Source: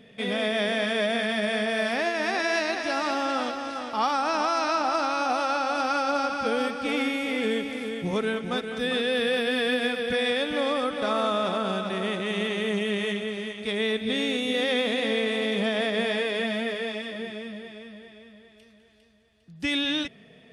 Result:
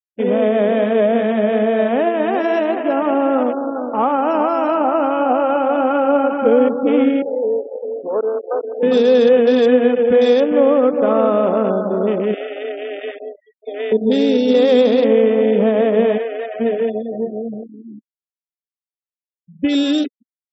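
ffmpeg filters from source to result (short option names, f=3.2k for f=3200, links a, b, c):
-filter_complex "[0:a]asettb=1/sr,asplit=3[a][b][c];[a]atrim=end=7.224[d];[b]atrim=start=7.22:end=8.83,asetpts=PTS-STARTPTS,afade=t=in:d=0.004:c=qsin,afade=t=out:st=1.606:d=0.004:c=qsin,asuperpass=centerf=840:order=4:qfactor=0.85[e];[c]atrim=start=8.826[f];[d][e]acrossfade=d=0.004:c1=hsin:c2=qsin[g];[g][f]acrossfade=d=0.004:c1=qsin:c2=hsin,asettb=1/sr,asplit=3[h][i][j];[h]atrim=end=12.344[k];[i]atrim=start=12.34:end=13.92,asetpts=PTS-STARTPTS,afade=t=in:d=0.004:c=qsin,afade=t=out:st=1.576:d=0.004:c=qsin,highpass=f=560:w=0.5412,highpass=f=560:w=1.3066[l];[j]atrim=start=13.916[m];[k][l]acrossfade=d=0.004:c1=hsin:c2=qsin[n];[n][m]acrossfade=d=0.004:c1=qsin:c2=hsin,asplit=3[o][p][q];[o]afade=t=out:st=16.17:d=0.02[r];[p]highpass=710,lowpass=2.4k,afade=t=in:st=16.17:d=0.02,afade=t=out:st=16.59:d=0.02[s];[q]afade=t=in:st=16.59:d=0.02[t];[r][s][t]amix=inputs=3:normalize=0,afwtdn=0.0282,afftfilt=real='re*gte(hypot(re,im),0.01)':imag='im*gte(hypot(re,im),0.01)':win_size=1024:overlap=0.75,equalizer=f=125:t=o:w=1:g=-4,equalizer=f=250:t=o:w=1:g=10,equalizer=f=500:t=o:w=1:g=11,equalizer=f=1k:t=o:w=1:g=3,equalizer=f=2k:t=o:w=1:g=-6,equalizer=f=8k:t=o:w=1:g=7,volume=2.5dB"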